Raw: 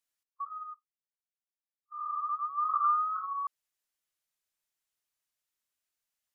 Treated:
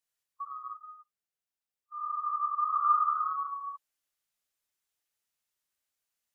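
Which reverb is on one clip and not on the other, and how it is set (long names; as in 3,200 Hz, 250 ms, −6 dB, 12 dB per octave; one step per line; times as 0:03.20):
reverb whose tail is shaped and stops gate 310 ms flat, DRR 0 dB
level −1.5 dB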